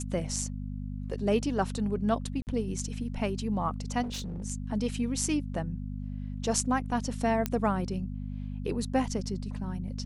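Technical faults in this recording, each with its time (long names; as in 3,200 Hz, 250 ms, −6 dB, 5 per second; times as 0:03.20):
mains hum 50 Hz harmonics 5 −36 dBFS
0:02.42–0:02.47: drop-out 49 ms
0:04.02–0:04.44: clipping −32.5 dBFS
0:07.46: click −13 dBFS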